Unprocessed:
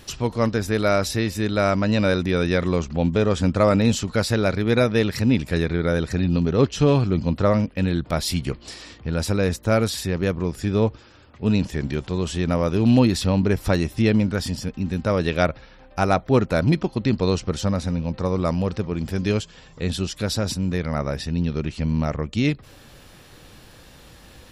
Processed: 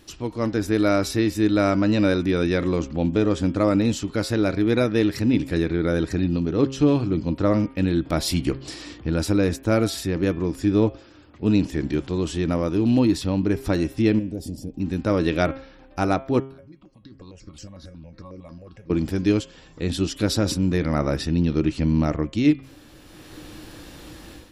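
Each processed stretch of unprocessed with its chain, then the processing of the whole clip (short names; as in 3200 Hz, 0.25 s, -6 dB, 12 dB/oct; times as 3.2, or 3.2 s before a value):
14.19–14.8 EQ curve 710 Hz 0 dB, 1300 Hz -25 dB, 11000 Hz 0 dB + compressor 2.5:1, threshold -26 dBFS
16.4–18.9 compressor, threshold -28 dBFS + resonator 550 Hz, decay 0.17 s, mix 80% + step phaser 11 Hz 930–3600 Hz
whole clip: bell 310 Hz +13 dB 0.32 oct; de-hum 134.1 Hz, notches 26; AGC; gain -7.5 dB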